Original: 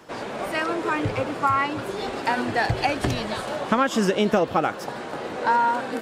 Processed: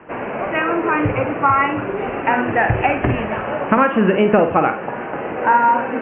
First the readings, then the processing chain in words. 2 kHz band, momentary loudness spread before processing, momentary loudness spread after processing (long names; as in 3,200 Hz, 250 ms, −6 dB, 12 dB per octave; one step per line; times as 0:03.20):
+6.5 dB, 9 LU, 10 LU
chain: Butterworth low-pass 2,800 Hz 96 dB per octave
flutter between parallel walls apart 8.6 metres, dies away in 0.36 s
level +6 dB